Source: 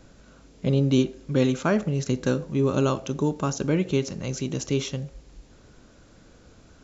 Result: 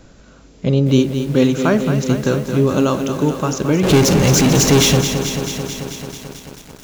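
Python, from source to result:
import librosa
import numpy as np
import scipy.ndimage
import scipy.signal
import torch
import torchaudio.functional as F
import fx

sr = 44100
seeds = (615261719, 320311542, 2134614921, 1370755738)

y = fx.power_curve(x, sr, exponent=0.35, at=(3.83, 5.01))
y = fx.echo_crushed(y, sr, ms=220, feedback_pct=80, bits=7, wet_db=-8.5)
y = F.gain(torch.from_numpy(y), 6.5).numpy()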